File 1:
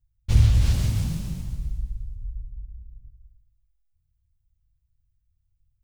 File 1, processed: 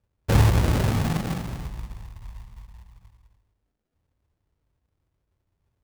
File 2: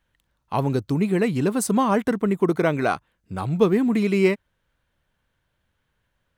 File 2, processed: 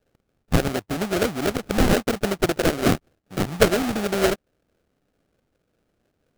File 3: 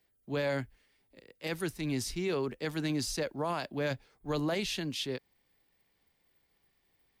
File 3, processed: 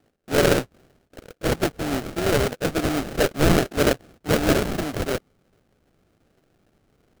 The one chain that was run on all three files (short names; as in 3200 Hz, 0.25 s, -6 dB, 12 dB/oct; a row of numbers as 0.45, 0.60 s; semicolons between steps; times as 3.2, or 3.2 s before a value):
treble ducked by the level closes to 1000 Hz, closed at -20.5 dBFS; band-pass 1200 Hz, Q 1.1; sample-rate reducer 1000 Hz, jitter 20%; match loudness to -23 LUFS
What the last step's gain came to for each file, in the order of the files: +22.5, +9.5, +20.0 dB